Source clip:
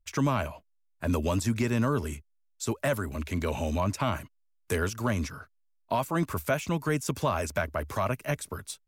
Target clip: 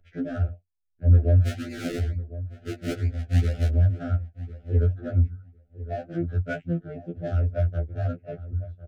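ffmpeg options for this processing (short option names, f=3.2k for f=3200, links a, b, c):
-filter_complex "[0:a]lowpass=3.6k,afwtdn=0.0282,equalizer=f=91:w=2.8:g=14,acompressor=mode=upward:threshold=-38dB:ratio=2.5,flanger=delay=6.8:depth=4.1:regen=-52:speed=0.61:shape=triangular,asplit=3[a][b][c];[a]afade=t=out:st=1.42:d=0.02[d];[b]acrusher=samples=38:mix=1:aa=0.000001:lfo=1:lforange=38:lforate=2.2,afade=t=in:st=1.42:d=0.02,afade=t=out:st=3.67:d=0.02[e];[c]afade=t=in:st=3.67:d=0.02[f];[d][e][f]amix=inputs=3:normalize=0,adynamicsmooth=sensitivity=6.5:basefreq=1.8k,asuperstop=centerf=1000:order=12:qfactor=1.8,asplit=2[g][h];[h]adelay=1054,lowpass=f=1.2k:p=1,volume=-15dB,asplit=2[i][j];[j]adelay=1054,lowpass=f=1.2k:p=1,volume=0.16[k];[g][i][k]amix=inputs=3:normalize=0,afftfilt=real='re*2*eq(mod(b,4),0)':imag='im*2*eq(mod(b,4),0)':win_size=2048:overlap=0.75,volume=3dB"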